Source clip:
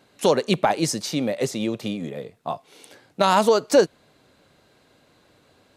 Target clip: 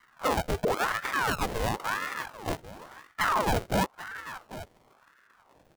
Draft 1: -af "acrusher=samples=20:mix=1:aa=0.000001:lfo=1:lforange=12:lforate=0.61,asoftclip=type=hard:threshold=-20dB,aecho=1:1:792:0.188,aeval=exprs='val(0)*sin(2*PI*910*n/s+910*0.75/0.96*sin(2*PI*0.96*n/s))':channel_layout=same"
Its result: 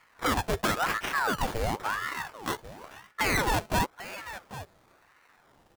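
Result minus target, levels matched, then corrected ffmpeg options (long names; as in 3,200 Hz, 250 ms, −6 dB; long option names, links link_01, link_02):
sample-and-hold swept by an LFO: distortion −20 dB
-af "acrusher=samples=45:mix=1:aa=0.000001:lfo=1:lforange=27:lforate=0.61,asoftclip=type=hard:threshold=-20dB,aecho=1:1:792:0.188,aeval=exprs='val(0)*sin(2*PI*910*n/s+910*0.75/0.96*sin(2*PI*0.96*n/s))':channel_layout=same"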